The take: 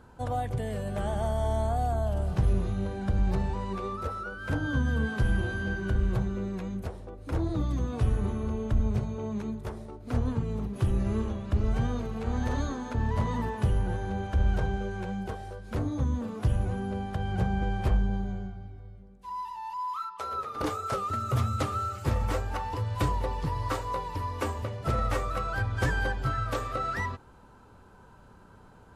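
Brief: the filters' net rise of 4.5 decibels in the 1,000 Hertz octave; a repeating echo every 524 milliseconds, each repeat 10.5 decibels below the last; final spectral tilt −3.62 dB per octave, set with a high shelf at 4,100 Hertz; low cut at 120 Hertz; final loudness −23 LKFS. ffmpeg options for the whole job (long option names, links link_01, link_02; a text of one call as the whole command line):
ffmpeg -i in.wav -af "highpass=120,equalizer=frequency=1000:width_type=o:gain=6,highshelf=frequency=4100:gain=-3.5,aecho=1:1:524|1048|1572:0.299|0.0896|0.0269,volume=8dB" out.wav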